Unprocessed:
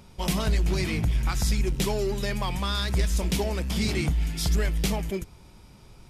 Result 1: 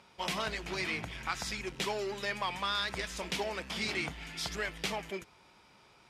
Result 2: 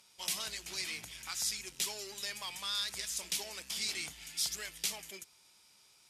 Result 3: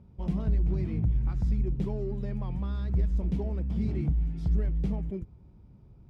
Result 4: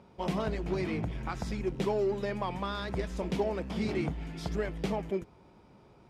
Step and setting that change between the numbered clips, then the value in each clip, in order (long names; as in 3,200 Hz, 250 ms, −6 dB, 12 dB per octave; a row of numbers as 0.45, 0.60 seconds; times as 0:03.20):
resonant band-pass, frequency: 1,700, 7,700, 100, 520 Hertz